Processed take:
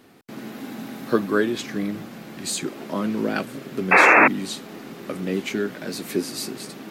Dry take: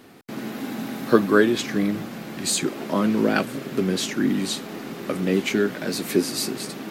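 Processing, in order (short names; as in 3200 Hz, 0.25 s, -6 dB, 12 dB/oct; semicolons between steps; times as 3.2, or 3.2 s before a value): painted sound noise, 3.91–4.28, 290–2700 Hz -9 dBFS; gain -4 dB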